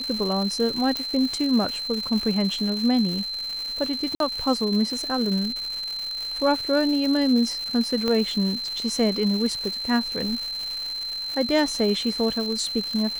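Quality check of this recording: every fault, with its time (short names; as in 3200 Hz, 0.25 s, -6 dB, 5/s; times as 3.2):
crackle 350/s -29 dBFS
tone 4100 Hz -28 dBFS
0.97 pop -12 dBFS
4.15–4.2 gap 52 ms
8.08 pop -12 dBFS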